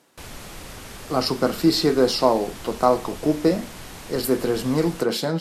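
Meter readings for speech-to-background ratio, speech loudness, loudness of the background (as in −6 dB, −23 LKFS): 16.5 dB, −22.0 LKFS, −38.5 LKFS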